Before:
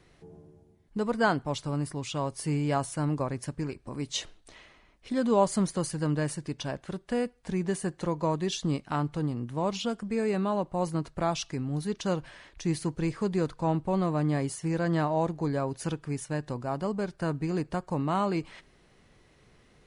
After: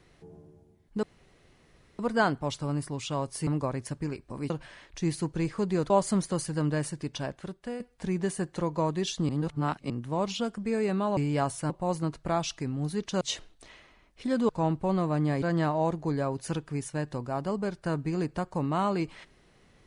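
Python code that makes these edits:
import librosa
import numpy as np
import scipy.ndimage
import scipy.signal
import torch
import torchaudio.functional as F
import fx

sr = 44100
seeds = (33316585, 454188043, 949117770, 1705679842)

y = fx.edit(x, sr, fx.insert_room_tone(at_s=1.03, length_s=0.96),
    fx.move(start_s=2.51, length_s=0.53, to_s=10.62),
    fx.swap(start_s=4.07, length_s=1.28, other_s=12.13, other_length_s=1.4),
    fx.fade_out_to(start_s=6.72, length_s=0.53, floor_db=-10.0),
    fx.reverse_span(start_s=8.74, length_s=0.61),
    fx.cut(start_s=14.46, length_s=0.32), tone=tone)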